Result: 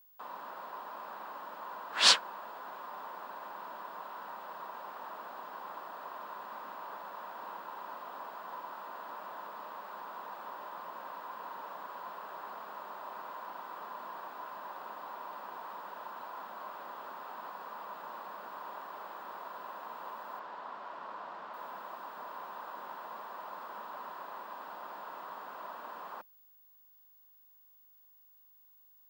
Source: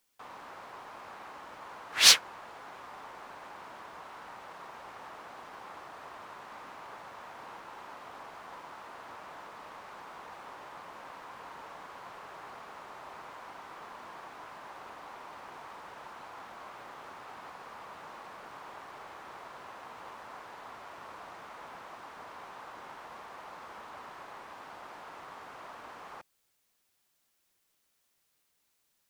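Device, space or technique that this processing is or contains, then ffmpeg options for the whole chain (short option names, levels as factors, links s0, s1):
old television with a line whistle: -filter_complex "[0:a]highpass=f=180:w=0.5412,highpass=f=180:w=1.3066,equalizer=f=200:t=q:w=4:g=4,equalizer=f=600:t=q:w=4:g=5,equalizer=f=1000:t=q:w=4:g=8,equalizer=f=1500:t=q:w=4:g=3,equalizer=f=2200:t=q:w=4:g=-7,equalizer=f=6100:t=q:w=4:g=-8,lowpass=f=8000:w=0.5412,lowpass=f=8000:w=1.3066,aeval=exprs='val(0)+0.00141*sin(2*PI*15625*n/s)':c=same,asettb=1/sr,asplit=3[s0][s1][s2];[s0]atrim=end=20.394[s3];[s1]atrim=start=20.39:end=21.54,asetpts=PTS-STARTPTS,afade=t=in:d=0.004:c=qsin,afade=t=out:st=1.146:d=0.004:c=qsin,lowpass=5400[s4];[s2]atrim=start=21.536[s5];[s3][s4]acrossfade=d=0.004:c1=hsin:c2=qsin[s6];[s6][s5]acrossfade=d=0.004:c1=qsin:c2=hsin,volume=0.794"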